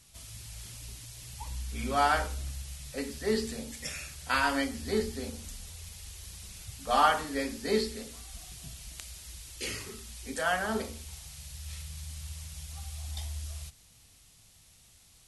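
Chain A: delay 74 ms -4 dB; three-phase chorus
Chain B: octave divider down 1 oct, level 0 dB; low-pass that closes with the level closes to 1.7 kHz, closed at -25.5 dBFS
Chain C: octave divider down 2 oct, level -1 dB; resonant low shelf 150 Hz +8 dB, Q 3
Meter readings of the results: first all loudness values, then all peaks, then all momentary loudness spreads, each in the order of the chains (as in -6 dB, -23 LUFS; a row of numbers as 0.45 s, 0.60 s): -34.5 LUFS, -34.0 LUFS, -31.0 LUFS; -11.5 dBFS, -11.0 dBFS, -9.5 dBFS; 18 LU, 16 LU, 13 LU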